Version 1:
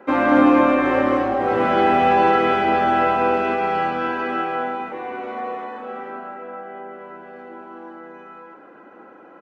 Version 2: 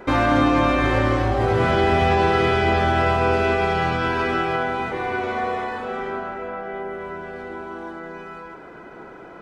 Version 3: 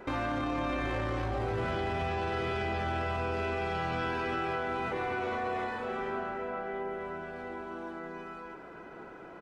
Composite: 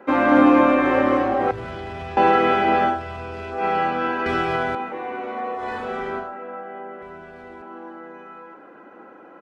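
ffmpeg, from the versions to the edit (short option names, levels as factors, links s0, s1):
-filter_complex "[2:a]asplit=3[s0][s1][s2];[1:a]asplit=2[s3][s4];[0:a]asplit=6[s5][s6][s7][s8][s9][s10];[s5]atrim=end=1.512[s11];[s0]atrim=start=1.508:end=2.172[s12];[s6]atrim=start=2.168:end=3.01[s13];[s1]atrim=start=2.85:end=3.66[s14];[s7]atrim=start=3.5:end=4.262[s15];[s3]atrim=start=4.258:end=4.752[s16];[s8]atrim=start=4.748:end=5.7[s17];[s4]atrim=start=5.54:end=6.34[s18];[s9]atrim=start=6.18:end=7.022[s19];[s2]atrim=start=7.018:end=7.622[s20];[s10]atrim=start=7.618[s21];[s11][s12]acrossfade=d=0.004:c1=hsin:c2=hsin[s22];[s22][s13]acrossfade=d=0.004:c1=hsin:c2=hsin[s23];[s23][s14]acrossfade=d=0.16:c1=tri:c2=tri[s24];[s24][s15]acrossfade=d=0.16:c1=tri:c2=tri[s25];[s25][s16]acrossfade=d=0.004:c1=hsin:c2=hsin[s26];[s26][s17]acrossfade=d=0.004:c1=hsin:c2=hsin[s27];[s27][s18]acrossfade=d=0.16:c1=tri:c2=tri[s28];[s28][s19]acrossfade=d=0.16:c1=tri:c2=tri[s29];[s29][s20]acrossfade=d=0.004:c1=hsin:c2=hsin[s30];[s30][s21]acrossfade=d=0.004:c1=hsin:c2=hsin"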